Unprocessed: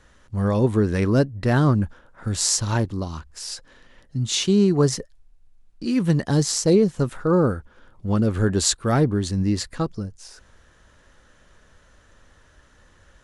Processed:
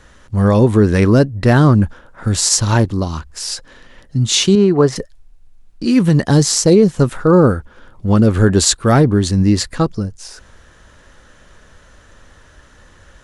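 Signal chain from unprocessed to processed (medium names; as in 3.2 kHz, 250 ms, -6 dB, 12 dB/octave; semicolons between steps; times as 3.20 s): 4.55–4.96 s: tone controls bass -7 dB, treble -15 dB; loudness maximiser +10 dB; trim -1 dB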